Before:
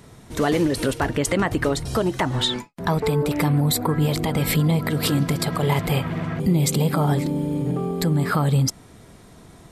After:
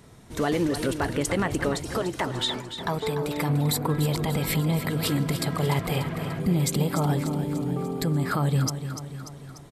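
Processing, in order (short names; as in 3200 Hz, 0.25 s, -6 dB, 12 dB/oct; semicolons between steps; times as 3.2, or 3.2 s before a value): 1.75–3.49 low shelf 230 Hz -6.5 dB; on a send: feedback echo 0.294 s, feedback 56%, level -10 dB; on the sum: gain -4.5 dB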